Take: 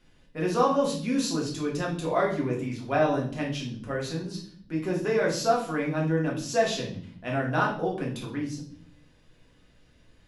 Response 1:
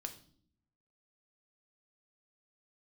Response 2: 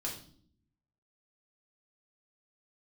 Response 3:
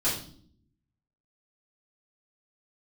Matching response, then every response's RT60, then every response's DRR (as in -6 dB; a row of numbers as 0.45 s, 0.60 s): 2; no single decay rate, 0.55 s, 0.55 s; 5.5 dB, -3.5 dB, -11.5 dB